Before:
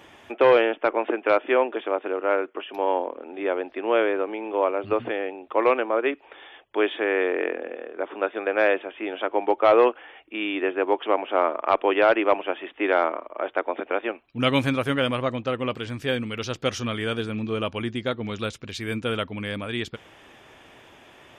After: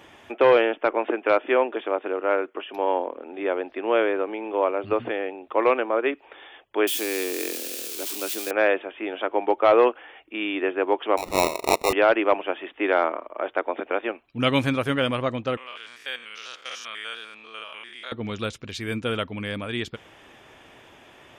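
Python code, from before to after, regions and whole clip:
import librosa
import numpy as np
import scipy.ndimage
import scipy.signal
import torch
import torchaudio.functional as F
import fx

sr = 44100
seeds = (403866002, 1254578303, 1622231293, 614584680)

y = fx.chain(x, sr, fx.crossing_spikes(level_db=-18.0),
    fx.band_shelf(hz=950.0, db=-9.5, octaves=2.4), at=(6.87, 8.51))
y = fx.chain(y, sr, fx.highpass(hz=380.0, slope=12),
    fx.sample_hold(seeds[0], rate_hz=1600.0, jitter_pct=0), at=(11.17, 11.93))
y = fx.chain(y, sr, fx.spec_steps(hold_ms=100),
    fx.highpass(hz=1200.0, slope=12), at=(15.57, 18.12))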